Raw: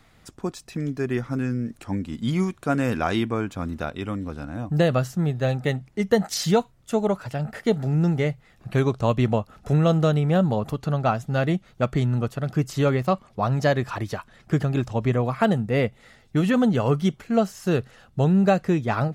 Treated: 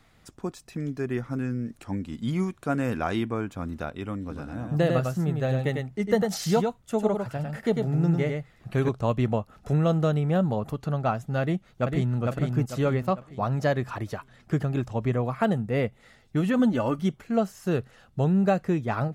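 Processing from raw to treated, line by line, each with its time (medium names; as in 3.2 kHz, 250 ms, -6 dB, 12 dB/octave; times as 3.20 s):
4.20–8.89 s: delay 100 ms -4.5 dB
11.41–12.20 s: echo throw 450 ms, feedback 40%, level -3 dB
16.59–16.99 s: comb 3.4 ms
whole clip: dynamic bell 4.5 kHz, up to -4 dB, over -46 dBFS, Q 0.75; trim -3.5 dB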